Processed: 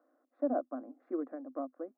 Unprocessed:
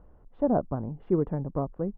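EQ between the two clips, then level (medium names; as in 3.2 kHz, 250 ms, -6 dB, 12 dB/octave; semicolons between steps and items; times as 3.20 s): rippled Chebyshev high-pass 250 Hz, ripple 3 dB; static phaser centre 610 Hz, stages 8; -3.0 dB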